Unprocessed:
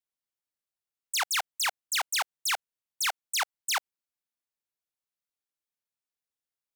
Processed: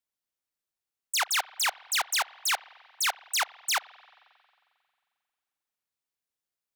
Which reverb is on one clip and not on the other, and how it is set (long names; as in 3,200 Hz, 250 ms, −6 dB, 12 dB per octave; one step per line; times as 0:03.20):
spring reverb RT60 2.3 s, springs 44 ms, chirp 35 ms, DRR 19.5 dB
level +1.5 dB